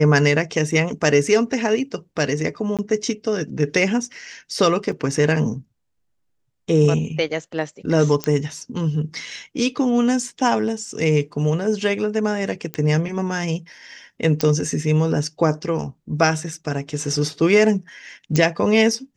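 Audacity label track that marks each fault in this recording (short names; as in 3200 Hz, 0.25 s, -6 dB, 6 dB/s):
2.770000	2.790000	gap 17 ms
4.920000	4.920000	gap 4.1 ms
8.240000	8.240000	pop -8 dBFS
12.740000	12.740000	pop -11 dBFS
14.410000	14.410000	pop -5 dBFS
18.360000	18.360000	pop -6 dBFS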